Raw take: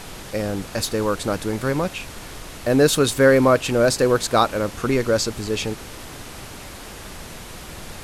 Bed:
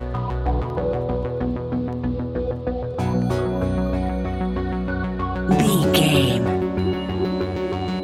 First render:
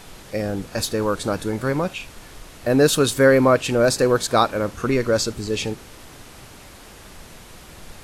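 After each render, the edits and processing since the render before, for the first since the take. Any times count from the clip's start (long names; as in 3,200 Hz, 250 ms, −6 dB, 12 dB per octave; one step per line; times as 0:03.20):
noise reduction from a noise print 6 dB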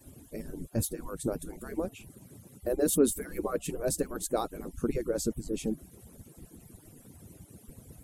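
harmonic-percussive split with one part muted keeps percussive
drawn EQ curve 250 Hz 0 dB, 370 Hz −3 dB, 1,100 Hz −19 dB, 4,800 Hz −19 dB, 9,700 Hz −2 dB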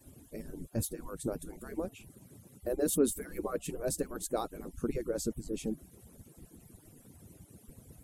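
level −3.5 dB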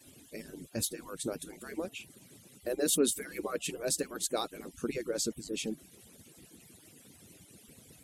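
meter weighting curve D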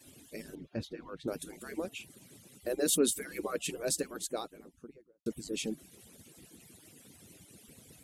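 0:00.55–0:01.28: high-frequency loss of the air 290 metres
0:03.82–0:05.26: fade out and dull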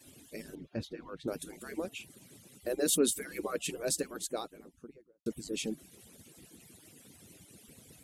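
no processing that can be heard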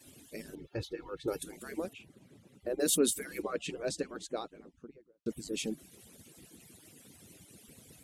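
0:00.58–0:01.43: comb filter 2.3 ms, depth 78%
0:01.93–0:02.80: low-pass filter 1,300 Hz 6 dB per octave
0:03.42–0:05.29: high-frequency loss of the air 96 metres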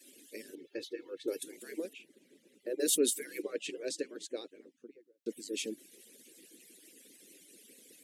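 high-pass filter 280 Hz 24 dB per octave
flat-topped bell 960 Hz −15 dB 1.3 octaves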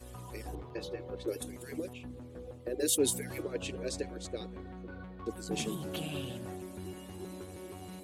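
mix in bed −21.5 dB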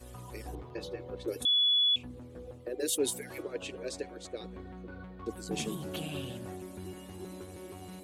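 0:01.45–0:01.96: beep over 3,410 Hz −22.5 dBFS
0:02.65–0:04.44: bass and treble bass −9 dB, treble −3 dB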